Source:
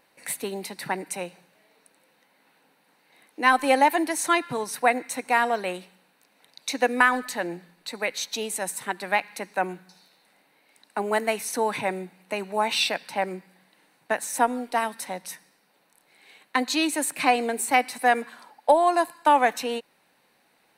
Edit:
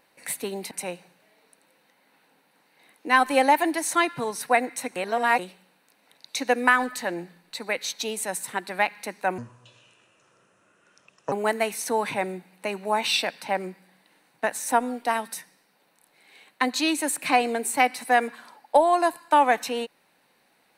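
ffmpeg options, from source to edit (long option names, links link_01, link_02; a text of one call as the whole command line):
ffmpeg -i in.wav -filter_complex "[0:a]asplit=7[link_01][link_02][link_03][link_04][link_05][link_06][link_07];[link_01]atrim=end=0.712[link_08];[link_02]atrim=start=1.038:end=5.292[link_09];[link_03]atrim=start=5.288:end=5.722,asetpts=PTS-STARTPTS,areverse[link_10];[link_04]atrim=start=5.718:end=9.714[link_11];[link_05]atrim=start=9.71:end=10.99,asetpts=PTS-STARTPTS,asetrate=29106,aresample=44100,atrim=end_sample=85527,asetpts=PTS-STARTPTS[link_12];[link_06]atrim=start=10.986:end=15.022[link_13];[link_07]atrim=start=15.288[link_14];[link_08][link_09]acrossfade=duration=0.004:curve1=hsin:curve2=hsin[link_15];[link_15][link_10]acrossfade=duration=0.004:curve1=hsin:curve2=hsin[link_16];[link_16][link_11]acrossfade=duration=0.004:curve1=hsin:curve2=hsin[link_17];[link_17][link_12]acrossfade=duration=0.004:curve1=hsin:curve2=hsin[link_18];[link_18][link_13]acrossfade=duration=0.004:curve1=hsin:curve2=hsin[link_19];[link_19][link_14]acrossfade=duration=0.004:curve1=hsin:curve2=hsin" out.wav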